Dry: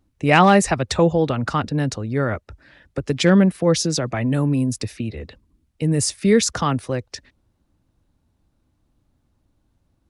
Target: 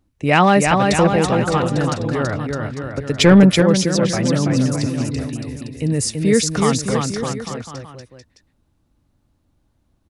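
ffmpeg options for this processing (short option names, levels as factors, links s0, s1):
-filter_complex "[0:a]aecho=1:1:330|610.5|848.9|1052|1224:0.631|0.398|0.251|0.158|0.1,asettb=1/sr,asplit=3[s0][s1][s2];[s0]atrim=end=3.194[s3];[s1]atrim=start=3.19:end=3.62,asetpts=PTS-STARTPTS,afade=t=in:d=0.004:c=qsin,afade=t=out:st=0.426:d=0.004:c=qsin,acontrast=72[s4];[s2]atrim=start=3.616[s5];[s3][s4]acrossfade=d=0.004:c1=hsin:c2=qsin[s6];[s6][s5]acrossfade=d=0.004:c1=qsin:c2=hsin"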